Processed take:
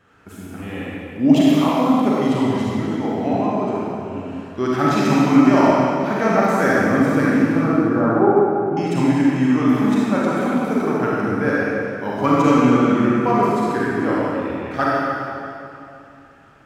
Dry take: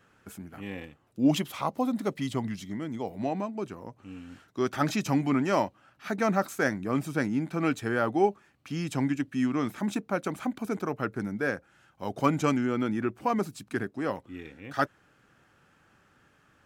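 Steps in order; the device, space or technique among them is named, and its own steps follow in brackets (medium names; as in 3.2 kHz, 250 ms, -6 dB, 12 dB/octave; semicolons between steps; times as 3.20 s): 7.60–8.77 s: Chebyshev low-pass 1.2 kHz, order 3; swimming-pool hall (reverberation RT60 2.7 s, pre-delay 34 ms, DRR -7 dB; treble shelf 4.6 kHz -8 dB); trim +4.5 dB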